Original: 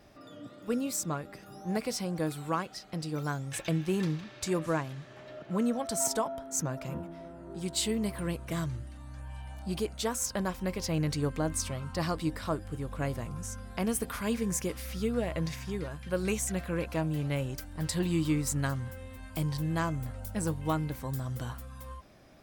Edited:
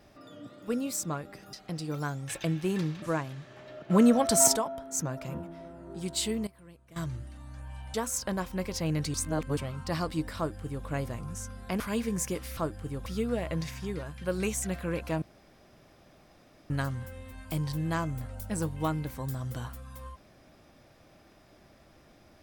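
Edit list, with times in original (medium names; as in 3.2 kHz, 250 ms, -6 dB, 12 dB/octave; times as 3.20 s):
1.53–2.77 s: delete
4.26–4.62 s: delete
5.50–6.16 s: gain +8.5 dB
7.68–8.95 s: dip -19 dB, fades 0.39 s logarithmic
9.54–10.02 s: delete
11.22–11.65 s: reverse
12.45–12.94 s: copy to 14.91 s
13.88–14.14 s: delete
17.07–18.55 s: room tone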